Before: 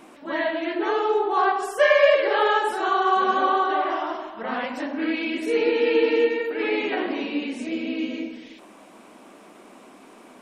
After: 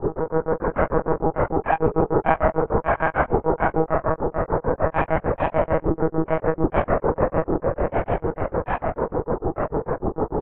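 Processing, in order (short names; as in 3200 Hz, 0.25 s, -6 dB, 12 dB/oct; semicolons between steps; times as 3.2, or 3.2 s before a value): per-bin compression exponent 0.2; Bessel low-pass 950 Hz, order 8; grains 0.138 s, grains 6.7/s, pitch spread up and down by 7 st; feedback echo 0.14 s, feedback 40%, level -21 dB; monotone LPC vocoder at 8 kHz 160 Hz; gain -2 dB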